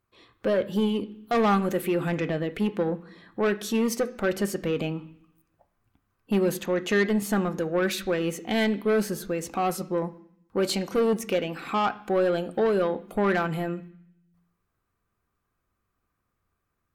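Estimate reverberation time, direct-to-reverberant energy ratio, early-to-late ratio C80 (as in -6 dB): 0.65 s, 8.0 dB, 20.0 dB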